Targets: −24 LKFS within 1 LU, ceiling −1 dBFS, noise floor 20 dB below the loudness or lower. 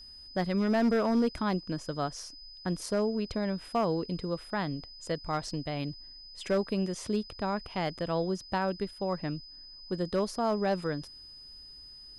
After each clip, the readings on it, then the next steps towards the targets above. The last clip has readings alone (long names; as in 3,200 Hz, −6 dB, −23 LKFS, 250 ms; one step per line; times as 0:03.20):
share of clipped samples 0.6%; peaks flattened at −21.0 dBFS; interfering tone 5,000 Hz; level of the tone −47 dBFS; integrated loudness −32.0 LKFS; sample peak −21.0 dBFS; target loudness −24.0 LKFS
→ clipped peaks rebuilt −21 dBFS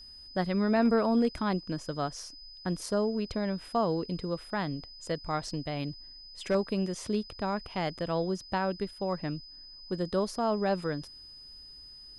share of clipped samples 0.0%; interfering tone 5,000 Hz; level of the tone −47 dBFS
→ notch filter 5,000 Hz, Q 30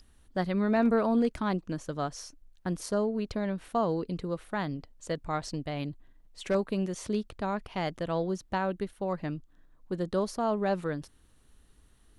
interfering tone none found; integrated loudness −31.5 LKFS; sample peak −14.0 dBFS; target loudness −24.0 LKFS
→ level +7.5 dB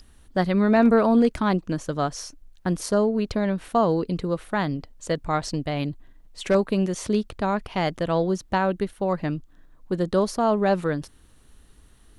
integrated loudness −24.0 LKFS; sample peak −6.5 dBFS; background noise floor −54 dBFS